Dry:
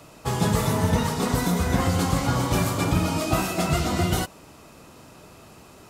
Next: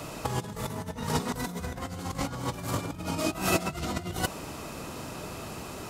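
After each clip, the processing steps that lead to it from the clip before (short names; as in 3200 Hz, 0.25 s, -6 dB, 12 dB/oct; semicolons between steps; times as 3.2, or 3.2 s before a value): negative-ratio compressor -30 dBFS, ratio -0.5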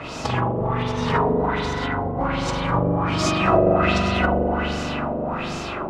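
spring tank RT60 3.4 s, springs 41 ms, chirp 40 ms, DRR -5.5 dB; LFO low-pass sine 1.3 Hz 540–6300 Hz; gain +4 dB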